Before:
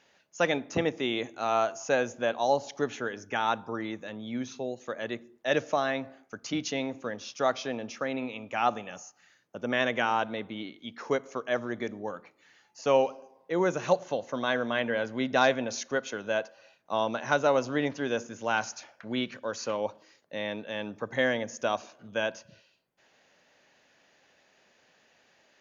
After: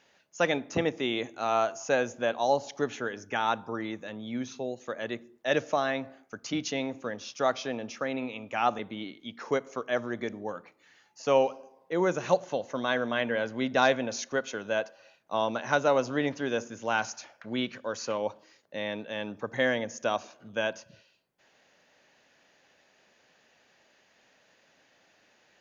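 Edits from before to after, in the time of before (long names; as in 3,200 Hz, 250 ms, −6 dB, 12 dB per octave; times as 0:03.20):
0:08.79–0:10.38: remove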